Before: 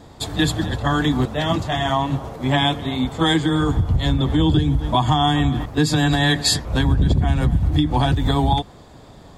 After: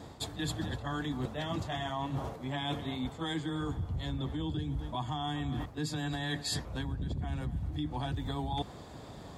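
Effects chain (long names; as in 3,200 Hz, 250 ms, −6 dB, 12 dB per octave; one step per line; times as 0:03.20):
high-pass filter 50 Hz
reversed playback
downward compressor 10 to 1, threshold −29 dBFS, peak gain reduction 16.5 dB
reversed playback
level −3 dB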